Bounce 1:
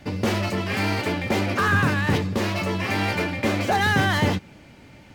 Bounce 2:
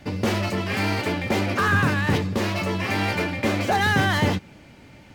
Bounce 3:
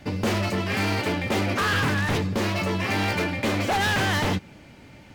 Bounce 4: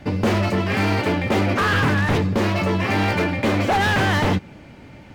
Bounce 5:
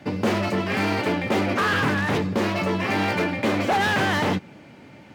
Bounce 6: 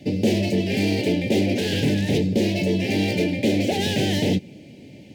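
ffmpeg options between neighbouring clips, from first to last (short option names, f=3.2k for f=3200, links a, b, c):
-af anull
-af "aeval=exprs='0.133*(abs(mod(val(0)/0.133+3,4)-2)-1)':c=same"
-af "highshelf=f=3.1k:g=-8.5,volume=5.5dB"
-af "highpass=140,volume=-2dB"
-af "asuperstop=centerf=1200:order=4:qfactor=0.56,volume=4dB"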